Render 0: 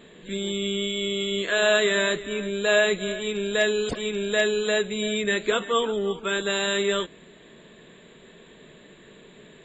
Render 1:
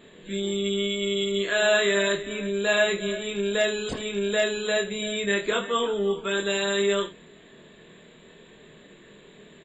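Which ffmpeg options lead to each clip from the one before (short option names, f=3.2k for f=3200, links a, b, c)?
-af "aecho=1:1:25|78:0.631|0.2,volume=-2.5dB"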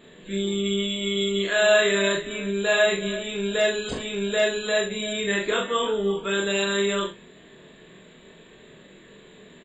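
-filter_complex "[0:a]asplit=2[a][b];[b]adelay=41,volume=-4dB[c];[a][c]amix=inputs=2:normalize=0"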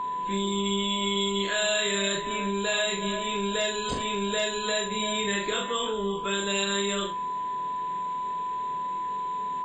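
-filter_complex "[0:a]aeval=exprs='val(0)+0.0355*sin(2*PI*1000*n/s)':c=same,acrossover=split=160|3000[a][b][c];[b]acompressor=threshold=-29dB:ratio=6[d];[a][d][c]amix=inputs=3:normalize=0,volume=1.5dB"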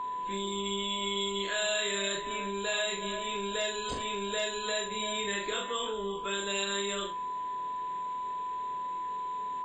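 -af "equalizer=f=170:t=o:w=0.94:g=-6.5,volume=-4.5dB"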